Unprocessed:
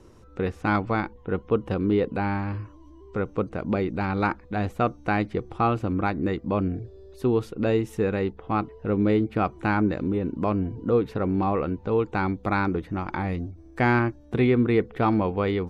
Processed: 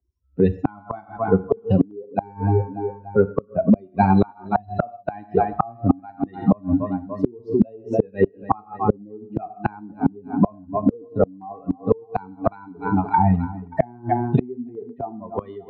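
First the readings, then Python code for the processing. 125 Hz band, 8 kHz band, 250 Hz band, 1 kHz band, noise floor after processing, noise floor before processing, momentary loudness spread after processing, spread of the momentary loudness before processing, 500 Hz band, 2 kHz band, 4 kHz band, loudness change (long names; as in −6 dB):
+3.0 dB, can't be measured, +3.0 dB, +3.5 dB, −49 dBFS, −49 dBFS, 12 LU, 8 LU, +2.5 dB, −7.0 dB, below −10 dB, +2.5 dB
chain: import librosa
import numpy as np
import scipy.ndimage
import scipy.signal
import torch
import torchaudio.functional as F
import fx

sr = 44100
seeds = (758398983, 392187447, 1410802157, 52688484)

p1 = fx.bin_expand(x, sr, power=3.0)
p2 = fx.env_lowpass_down(p1, sr, base_hz=570.0, full_db=-24.5)
p3 = scipy.signal.sosfilt(scipy.signal.butter(4, 81.0, 'highpass', fs=sr, output='sos'), p2)
p4 = p3 + fx.echo_feedback(p3, sr, ms=291, feedback_pct=48, wet_db=-22.5, dry=0)
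p5 = fx.rev_gated(p4, sr, seeds[0], gate_ms=180, shape='falling', drr_db=11.5)
p6 = fx.env_lowpass(p5, sr, base_hz=1900.0, full_db=-23.5)
p7 = fx.air_absorb(p6, sr, metres=73.0)
p8 = fx.over_compress(p7, sr, threshold_db=-35.0, ratio=-0.5)
p9 = p7 + F.gain(torch.from_numpy(p8), 2.0).numpy()
p10 = fx.peak_eq(p9, sr, hz=810.0, db=10.5, octaves=1.3)
p11 = fx.small_body(p10, sr, hz=(260.0, 400.0, 690.0, 4000.0), ring_ms=65, db=17)
p12 = fx.gate_flip(p11, sr, shuts_db=-12.0, range_db=-33)
p13 = fx.band_squash(p12, sr, depth_pct=40)
y = F.gain(torch.from_numpy(p13), 8.5).numpy()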